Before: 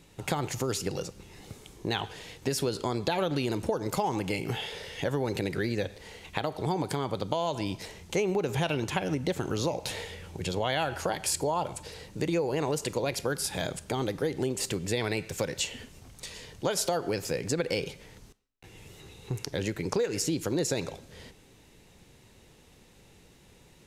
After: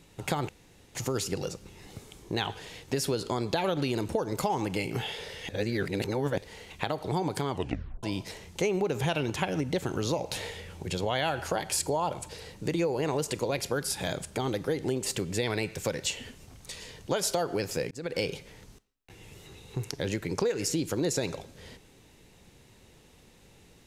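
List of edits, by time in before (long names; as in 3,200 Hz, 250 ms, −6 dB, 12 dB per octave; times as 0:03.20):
0:00.49: splice in room tone 0.46 s
0:05.03–0:05.92: reverse
0:07.05: tape stop 0.52 s
0:17.45–0:17.73: fade in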